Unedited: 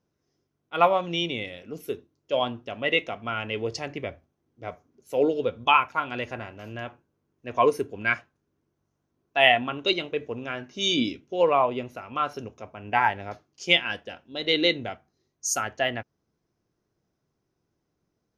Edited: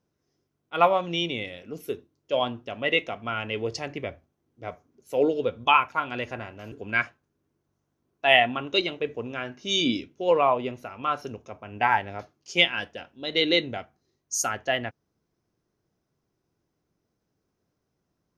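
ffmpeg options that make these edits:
ffmpeg -i in.wav -filter_complex "[0:a]asplit=2[link_01][link_02];[link_01]atrim=end=6.722[link_03];[link_02]atrim=start=7.838[link_04];[link_03][link_04]acrossfade=duration=0.004:curve1=hsin:curve2=hsin" out.wav

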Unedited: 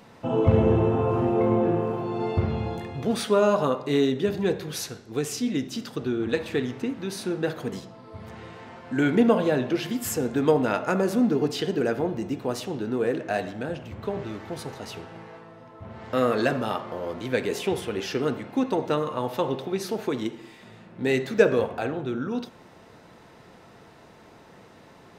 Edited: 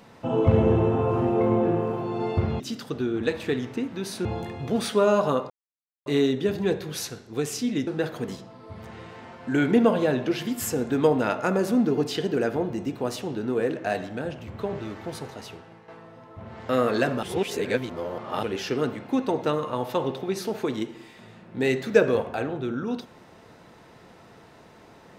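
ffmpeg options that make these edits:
ffmpeg -i in.wav -filter_complex "[0:a]asplit=8[link_01][link_02][link_03][link_04][link_05][link_06][link_07][link_08];[link_01]atrim=end=2.602[link_09];[link_02]atrim=start=5.658:end=7.312[link_10];[link_03]atrim=start=2.598:end=3.85,asetpts=PTS-STARTPTS,afade=type=out:start_time=1.248:duration=0.004:curve=hsin,apad=pad_dur=0.56[link_11];[link_04]atrim=start=3.85:end=5.662,asetpts=PTS-STARTPTS,afade=type=in:duration=0.004:curve=hsin[link_12];[link_05]atrim=start=7.308:end=15.32,asetpts=PTS-STARTPTS,afade=type=out:start_time=7.282:duration=0.73:silence=0.334965[link_13];[link_06]atrim=start=15.32:end=16.672,asetpts=PTS-STARTPTS,afade=type=in:duration=0.004:curve=hsin:silence=0.334965[link_14];[link_07]atrim=start=16.668:end=17.872,asetpts=PTS-STARTPTS,areverse[link_15];[link_08]atrim=start=17.868[link_16];[link_09][link_10]acrossfade=duration=0.004:curve1=hsin:curve2=hsin[link_17];[link_11][link_12]concat=n=2:v=0:a=1[link_18];[link_17][link_18]acrossfade=duration=0.004:curve1=hsin:curve2=hsin[link_19];[link_13][link_14]concat=n=2:v=0:a=1[link_20];[link_19][link_20]acrossfade=duration=0.004:curve1=hsin:curve2=hsin[link_21];[link_21][link_15]acrossfade=duration=0.004:curve1=hsin:curve2=hsin[link_22];[link_22][link_16]acrossfade=duration=0.004:curve1=hsin:curve2=hsin" out.wav

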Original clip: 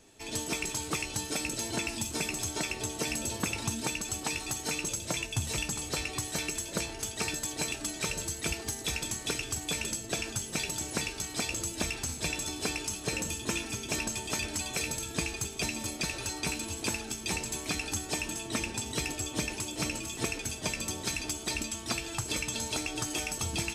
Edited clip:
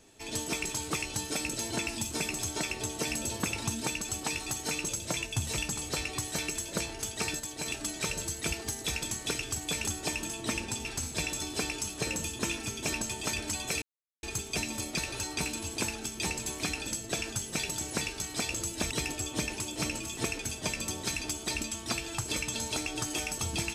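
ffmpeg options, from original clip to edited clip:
ffmpeg -i in.wav -filter_complex "[0:a]asplit=9[link_01][link_02][link_03][link_04][link_05][link_06][link_07][link_08][link_09];[link_01]atrim=end=7.402[link_10];[link_02]atrim=start=7.398:end=7.662,asetpts=PTS-STARTPTS,volume=-4dB[link_11];[link_03]atrim=start=7.658:end=9.872[link_12];[link_04]atrim=start=17.928:end=18.912[link_13];[link_05]atrim=start=11.908:end=14.88,asetpts=PTS-STARTPTS,afade=type=out:start_time=2.968:duration=0.004:curve=hsin[link_14];[link_06]atrim=start=14.88:end=15.29,asetpts=PTS-STARTPTS,volume=0[link_15];[link_07]atrim=start=15.29:end=17.932,asetpts=PTS-STARTPTS,afade=type=in:duration=0.004:curve=hsin[link_16];[link_08]atrim=start=9.868:end=11.912[link_17];[link_09]atrim=start=18.908[link_18];[link_10][link_11]acrossfade=duration=0.004:curve1=hsin:curve2=hsin[link_19];[link_19][link_12]acrossfade=duration=0.004:curve1=hsin:curve2=hsin[link_20];[link_20][link_13]acrossfade=duration=0.004:curve1=hsin:curve2=hsin[link_21];[link_14][link_15][link_16]concat=n=3:v=0:a=1[link_22];[link_21][link_22]acrossfade=duration=0.004:curve1=hsin:curve2=hsin[link_23];[link_23][link_17]acrossfade=duration=0.004:curve1=hsin:curve2=hsin[link_24];[link_24][link_18]acrossfade=duration=0.004:curve1=hsin:curve2=hsin" out.wav

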